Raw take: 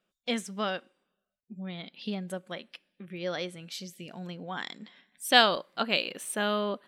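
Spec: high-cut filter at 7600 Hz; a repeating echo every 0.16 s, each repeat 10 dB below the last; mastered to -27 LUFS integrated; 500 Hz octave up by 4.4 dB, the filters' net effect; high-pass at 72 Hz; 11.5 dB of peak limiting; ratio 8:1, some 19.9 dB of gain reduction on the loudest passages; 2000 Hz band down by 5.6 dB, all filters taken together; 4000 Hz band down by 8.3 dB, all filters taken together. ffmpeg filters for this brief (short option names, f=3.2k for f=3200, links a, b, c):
-af "highpass=72,lowpass=7.6k,equalizer=f=500:t=o:g=6,equalizer=f=2k:t=o:g=-6,equalizer=f=4k:t=o:g=-8.5,acompressor=threshold=-37dB:ratio=8,alimiter=level_in=11.5dB:limit=-24dB:level=0:latency=1,volume=-11.5dB,aecho=1:1:160|320|480|640:0.316|0.101|0.0324|0.0104,volume=18dB"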